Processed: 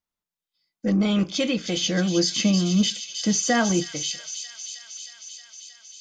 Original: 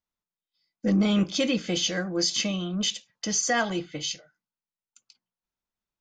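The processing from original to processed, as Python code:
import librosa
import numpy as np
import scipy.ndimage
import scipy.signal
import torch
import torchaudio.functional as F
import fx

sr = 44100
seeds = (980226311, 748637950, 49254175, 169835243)

y = fx.peak_eq(x, sr, hz=210.0, db=9.0, octaves=1.7, at=(1.83, 3.84))
y = fx.echo_wet_highpass(y, sr, ms=314, feedback_pct=77, hz=3800.0, wet_db=-5)
y = F.gain(torch.from_numpy(y), 1.0).numpy()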